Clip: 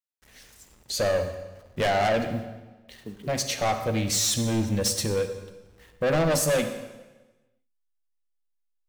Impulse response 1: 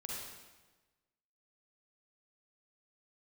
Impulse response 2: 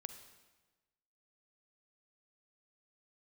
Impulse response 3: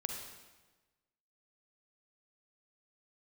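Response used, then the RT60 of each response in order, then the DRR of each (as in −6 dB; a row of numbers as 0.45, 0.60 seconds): 2; 1.2, 1.2, 1.2 seconds; −4.0, 8.5, 2.5 decibels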